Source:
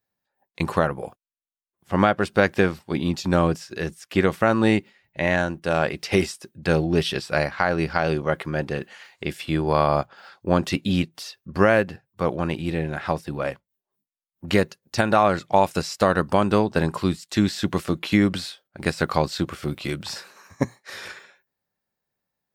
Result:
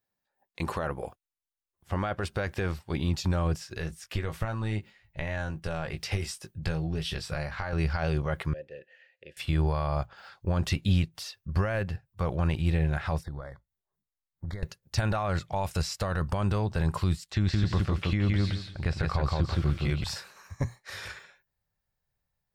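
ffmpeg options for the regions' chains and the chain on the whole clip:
-filter_complex "[0:a]asettb=1/sr,asplit=3[a][b][c];[a]atrim=end=3.744[d];[b]atrim=start=3.74:end=7.73,asetpts=PTS-STARTPTS,afade=t=in:d=0.004:c=qsin,afade=t=out:st=3.986:d=0.004:c=qsin,acompressor=threshold=-28dB:ratio=4:attack=3.2:release=140:knee=1:detection=peak,asplit=2[e][f];[f]adelay=19,volume=-7dB[g];[e][g]amix=inputs=2:normalize=0,atrim=end_sample=175959[h];[c]atrim=start=7.726[i];[d][h]acrossfade=d=0.004:c1=hsin:c2=qsin[j];[j][i]acrossfade=d=0.004:c1=qsin:c2=hsin,asettb=1/sr,asplit=3[k][l][m];[k]atrim=end=8.534[n];[l]atrim=start=8.53:end=9.37,asetpts=PTS-STARTPTS,afade=t=in:d=0.004:c=qsin,afade=t=out:st=0.836:d=0.004:c=qsin,acrossover=split=490|3000[o][p][q];[p]acompressor=threshold=-41dB:ratio=4:attack=3.2:release=140:knee=2.83:detection=peak[r];[o][r][q]amix=inputs=3:normalize=0,asplit=3[s][t][u];[s]bandpass=f=530:t=q:w=8,volume=0dB[v];[t]bandpass=f=1.84k:t=q:w=8,volume=-6dB[w];[u]bandpass=f=2.48k:t=q:w=8,volume=-9dB[x];[v][w][x]amix=inputs=3:normalize=0[y];[m]atrim=start=9.366[z];[n][y]acrossfade=d=0.004:c1=hsin:c2=qsin[aa];[aa][z]acrossfade=d=0.004:c1=qsin:c2=hsin,asettb=1/sr,asplit=3[ab][ac][ad];[ab]atrim=end=13.234[ae];[ac]atrim=start=13.23:end=14.63,asetpts=PTS-STARTPTS,afade=t=in:d=0.004:c=qsin,afade=t=out:st=1.396:d=0.004:c=qsin,bass=f=250:g=-1,treble=f=4k:g=-8,acompressor=threshold=-34dB:ratio=8:attack=3.2:release=140:knee=1:detection=peak,asuperstop=centerf=2700:order=12:qfactor=2.3[af];[ad]atrim=start=14.626[ag];[ae][af]acrossfade=d=0.004:c1=hsin:c2=qsin[ah];[ah][ag]acrossfade=d=0.004:c1=qsin:c2=hsin,asettb=1/sr,asplit=3[ai][aj][ak];[ai]atrim=end=17.294[al];[aj]atrim=start=17.29:end=20.04,asetpts=PTS-STARTPTS,afade=t=in:d=0.004:c=qsin,afade=t=out:st=2.746:d=0.004:c=qsin,acrossover=split=6500[am][an];[an]acompressor=threshold=-55dB:ratio=4:attack=1:release=60[ao];[am][ao]amix=inputs=2:normalize=0,highshelf=f=4.7k:g=-7.5,aecho=1:1:168|336|504:0.668|0.12|0.0217,atrim=end_sample=121275[ap];[ak]atrim=start=20.036[aq];[al][ap]acrossfade=d=0.004:c1=hsin:c2=qsin[ar];[ar][aq]acrossfade=d=0.004:c1=qsin:c2=hsin,alimiter=limit=-16.5dB:level=0:latency=1:release=28,asubboost=boost=12:cutoff=75,volume=-3dB"

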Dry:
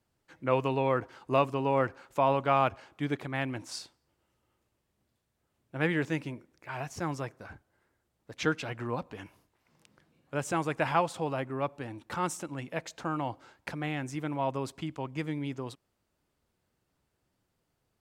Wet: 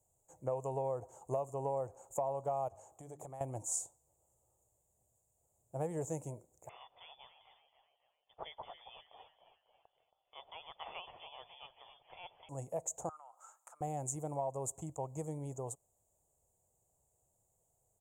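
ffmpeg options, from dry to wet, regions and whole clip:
-filter_complex "[0:a]asettb=1/sr,asplit=3[a][b][c];[a]atrim=end=2.684[d];[b]atrim=start=2.68:end=3.41,asetpts=PTS-STARTPTS,afade=t=in:d=0.004:c=qsin,afade=t=out:st=0.726:d=0.004:c=qsin,bandreject=f=50:t=h:w=6,bandreject=f=100:t=h:w=6,bandreject=f=150:t=h:w=6,bandreject=f=200:t=h:w=6,bandreject=f=250:t=h:w=6,bandreject=f=300:t=h:w=6,bandreject=f=350:t=h:w=6,acompressor=threshold=-38dB:ratio=6:attack=3.2:release=140:knee=1:detection=peak,lowshelf=f=210:g=-6.5[e];[c]atrim=start=3.406[f];[d][e]acrossfade=d=0.004:c1=hsin:c2=qsin[g];[g][f]acrossfade=d=0.004:c1=qsin:c2=hsin,asettb=1/sr,asplit=3[h][i][j];[h]atrim=end=6.694[k];[i]atrim=start=6.69:end=12.49,asetpts=PTS-STARTPTS,afade=t=in:d=0.004:c=qsin,afade=t=out:st=5.796:d=0.004:c=qsin,acrusher=bits=9:mode=log:mix=0:aa=0.000001,asplit=6[l][m][n][o][p][q];[m]adelay=273,afreqshift=100,volume=-11dB[r];[n]adelay=546,afreqshift=200,volume=-17.7dB[s];[o]adelay=819,afreqshift=300,volume=-24.5dB[t];[p]adelay=1092,afreqshift=400,volume=-31.2dB[u];[q]adelay=1365,afreqshift=500,volume=-38dB[v];[l][r][s][t][u][v]amix=inputs=6:normalize=0,atrim=end_sample=255780,lowpass=f=3.1k:t=q:w=0.5098,lowpass=f=3.1k:t=q:w=0.6013,lowpass=f=3.1k:t=q:w=0.9,lowpass=f=3.1k:t=q:w=2.563,afreqshift=-3600[w];[j]atrim=start=12.486[x];[k][w]acrossfade=d=0.004:c1=hsin:c2=qsin[y];[y][x]acrossfade=d=0.004:c1=qsin:c2=hsin,asettb=1/sr,asplit=3[z][aa][ab];[z]atrim=end=13.094[ac];[aa]atrim=start=13.09:end=13.81,asetpts=PTS-STARTPTS,afade=t=in:d=0.004:c=qsin,afade=t=out:st=0.716:d=0.004:c=qsin,acompressor=threshold=-44dB:ratio=12:attack=3.2:release=140:knee=1:detection=peak,highpass=f=1.3k:t=q:w=12[ad];[ab]atrim=start=13.806[ae];[ac][ad]acrossfade=d=0.004:c1=hsin:c2=qsin[af];[af][ae]acrossfade=d=0.004:c1=qsin:c2=hsin,firequalizer=gain_entry='entry(110,0);entry(260,-13);entry(460,1);entry(740,5);entry(1500,-24);entry(2600,-24);entry(4700,-26);entry(6900,13);entry(11000,1)':delay=0.05:min_phase=1,acompressor=threshold=-32dB:ratio=6,highshelf=f=7.7k:g=6.5,volume=-1.5dB"

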